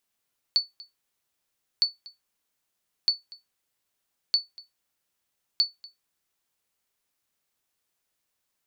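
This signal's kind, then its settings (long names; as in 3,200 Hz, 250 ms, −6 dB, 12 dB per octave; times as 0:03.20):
ping with an echo 4,470 Hz, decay 0.17 s, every 1.26 s, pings 5, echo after 0.24 s, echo −22.5 dB −13 dBFS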